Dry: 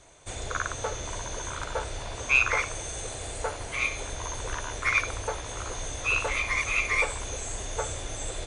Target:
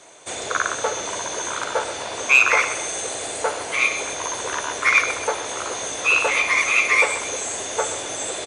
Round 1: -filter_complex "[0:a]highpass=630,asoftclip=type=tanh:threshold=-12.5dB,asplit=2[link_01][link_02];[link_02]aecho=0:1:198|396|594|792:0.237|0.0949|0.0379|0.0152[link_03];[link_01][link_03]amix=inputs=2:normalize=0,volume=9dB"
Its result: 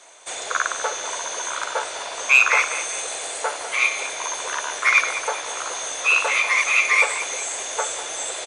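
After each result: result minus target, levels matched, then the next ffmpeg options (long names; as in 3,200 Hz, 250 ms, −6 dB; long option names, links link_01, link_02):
echo 70 ms late; 250 Hz band −10.0 dB
-filter_complex "[0:a]highpass=630,asoftclip=type=tanh:threshold=-12.5dB,asplit=2[link_01][link_02];[link_02]aecho=0:1:128|256|384|512:0.237|0.0949|0.0379|0.0152[link_03];[link_01][link_03]amix=inputs=2:normalize=0,volume=9dB"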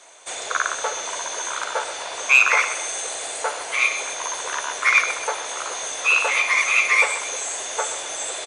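250 Hz band −10.0 dB
-filter_complex "[0:a]highpass=270,asoftclip=type=tanh:threshold=-12.5dB,asplit=2[link_01][link_02];[link_02]aecho=0:1:128|256|384|512:0.237|0.0949|0.0379|0.0152[link_03];[link_01][link_03]amix=inputs=2:normalize=0,volume=9dB"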